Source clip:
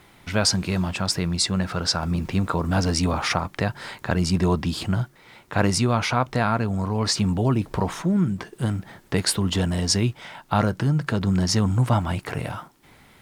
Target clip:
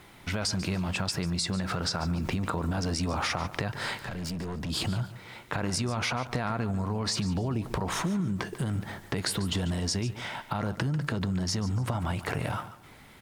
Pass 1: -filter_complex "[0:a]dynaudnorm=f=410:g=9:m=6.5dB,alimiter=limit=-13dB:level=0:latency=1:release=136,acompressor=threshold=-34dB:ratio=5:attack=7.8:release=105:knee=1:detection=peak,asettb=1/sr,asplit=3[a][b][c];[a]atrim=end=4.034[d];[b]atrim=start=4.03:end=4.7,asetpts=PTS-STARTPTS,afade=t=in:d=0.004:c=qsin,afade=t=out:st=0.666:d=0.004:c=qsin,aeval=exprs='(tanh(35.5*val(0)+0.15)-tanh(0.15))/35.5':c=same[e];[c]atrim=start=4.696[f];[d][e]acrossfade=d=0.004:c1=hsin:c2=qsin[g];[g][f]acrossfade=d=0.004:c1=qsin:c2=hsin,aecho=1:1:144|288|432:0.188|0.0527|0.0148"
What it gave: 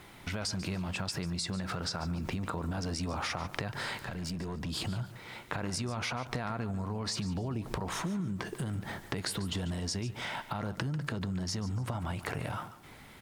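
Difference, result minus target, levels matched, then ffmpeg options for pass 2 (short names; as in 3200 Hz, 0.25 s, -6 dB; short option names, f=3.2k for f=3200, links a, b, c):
compressor: peak gain reduction +5 dB
-filter_complex "[0:a]dynaudnorm=f=410:g=9:m=6.5dB,alimiter=limit=-13dB:level=0:latency=1:release=136,acompressor=threshold=-27.5dB:ratio=5:attack=7.8:release=105:knee=1:detection=peak,asettb=1/sr,asplit=3[a][b][c];[a]atrim=end=4.034[d];[b]atrim=start=4.03:end=4.7,asetpts=PTS-STARTPTS,afade=t=in:d=0.004:c=qsin,afade=t=out:st=0.666:d=0.004:c=qsin,aeval=exprs='(tanh(35.5*val(0)+0.15)-tanh(0.15))/35.5':c=same[e];[c]atrim=start=4.696[f];[d][e]acrossfade=d=0.004:c1=hsin:c2=qsin[g];[g][f]acrossfade=d=0.004:c1=qsin:c2=hsin,aecho=1:1:144|288|432:0.188|0.0527|0.0148"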